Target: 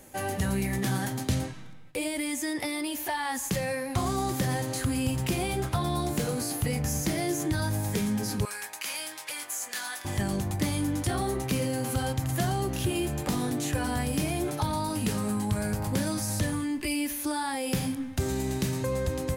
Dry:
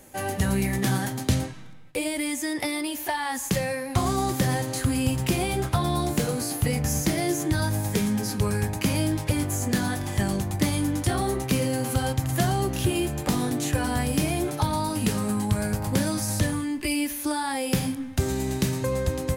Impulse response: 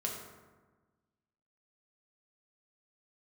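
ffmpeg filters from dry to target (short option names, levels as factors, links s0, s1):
-filter_complex "[0:a]asettb=1/sr,asplit=3[s0][s1][s2];[s0]atrim=end=8.454[s3];[s1]atrim=start=8.45:end=10.05,asetpts=PTS-STARTPTS,afade=t=in:d=0.004:c=qsin,afade=t=out:st=1.596:d=0.004:c=qsin,highpass=1200[s4];[s2]atrim=start=10.046[s5];[s3][s4]acrossfade=d=0.004:c1=hsin:c2=qsin[s6];[s6][s5]acrossfade=d=0.004:c1=qsin:c2=hsin,asplit=2[s7][s8];[s8]alimiter=limit=0.0708:level=0:latency=1,volume=1.12[s9];[s7][s9]amix=inputs=2:normalize=0,volume=0.422"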